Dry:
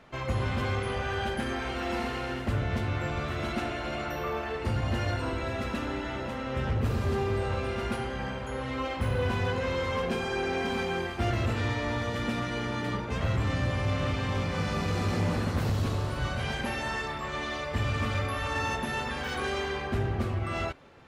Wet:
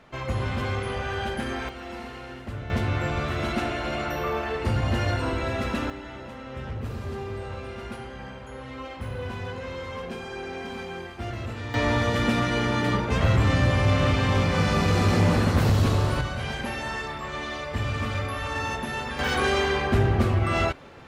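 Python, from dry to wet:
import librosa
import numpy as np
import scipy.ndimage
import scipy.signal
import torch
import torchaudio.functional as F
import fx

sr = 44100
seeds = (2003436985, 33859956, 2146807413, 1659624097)

y = fx.gain(x, sr, db=fx.steps((0.0, 1.5), (1.69, -6.0), (2.7, 4.5), (5.9, -5.0), (11.74, 7.5), (16.21, 1.0), (19.19, 8.0)))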